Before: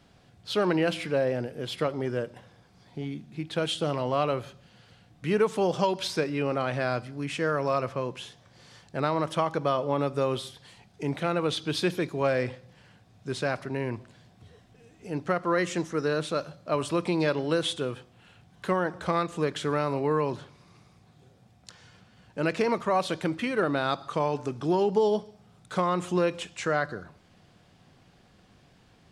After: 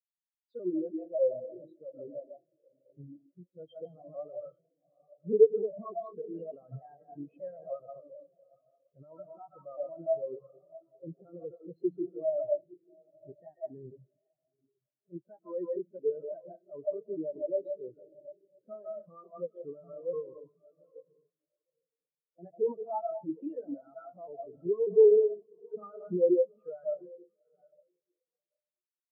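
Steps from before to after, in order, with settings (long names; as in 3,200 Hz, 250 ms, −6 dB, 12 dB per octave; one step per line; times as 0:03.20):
pitch shifter gated in a rhythm +2.5 semitones, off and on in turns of 296 ms
treble cut that deepens with the level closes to 1,600 Hz, closed at −22.5 dBFS
on a send: feedback delay with all-pass diffusion 828 ms, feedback 48%, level −9 dB
on the sum: comb and all-pass reverb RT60 0.55 s, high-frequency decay 0.7×, pre-delay 110 ms, DRR 4 dB
boost into a limiter +20 dB
every bin expanded away from the loudest bin 4 to 1
level −9 dB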